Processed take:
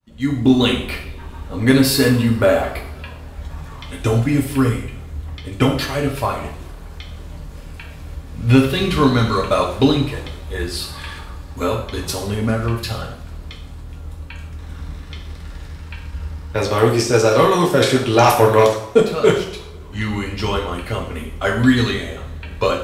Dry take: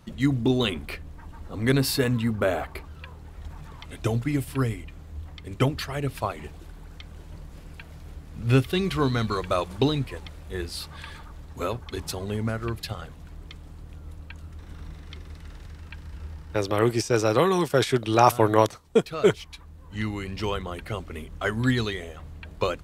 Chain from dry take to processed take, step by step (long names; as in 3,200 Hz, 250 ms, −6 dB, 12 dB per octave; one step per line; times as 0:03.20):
fade in at the beginning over 0.52 s
sine wavefolder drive 4 dB, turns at −3.5 dBFS
coupled-rooms reverb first 0.57 s, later 3.7 s, from −28 dB, DRR −1 dB
level −2.5 dB